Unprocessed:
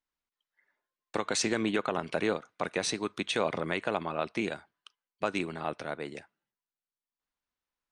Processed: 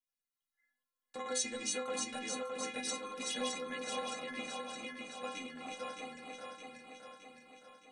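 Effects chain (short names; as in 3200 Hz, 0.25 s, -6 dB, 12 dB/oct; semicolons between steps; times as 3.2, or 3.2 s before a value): regenerating reverse delay 0.308 s, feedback 75%, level -2 dB; high shelf 3800 Hz +10.5 dB; metallic resonator 250 Hz, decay 0.32 s, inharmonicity 0.008; gain +1.5 dB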